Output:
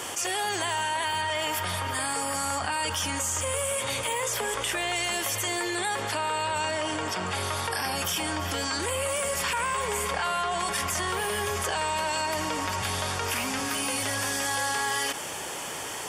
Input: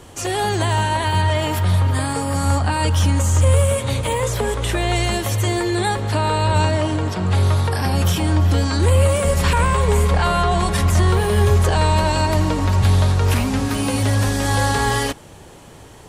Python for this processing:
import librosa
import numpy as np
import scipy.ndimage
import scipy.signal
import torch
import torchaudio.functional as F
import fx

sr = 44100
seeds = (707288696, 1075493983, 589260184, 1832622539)

y = fx.highpass(x, sr, hz=1400.0, slope=6)
y = fx.notch(y, sr, hz=4000.0, q=5.8)
y = fx.env_flatten(y, sr, amount_pct=70)
y = y * 10.0 ** (-4.5 / 20.0)